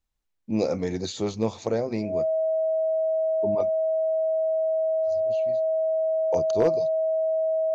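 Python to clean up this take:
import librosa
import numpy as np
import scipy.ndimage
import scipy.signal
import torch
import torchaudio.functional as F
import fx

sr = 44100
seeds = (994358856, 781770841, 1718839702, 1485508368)

y = fx.fix_declip(x, sr, threshold_db=-12.5)
y = fx.notch(y, sr, hz=640.0, q=30.0)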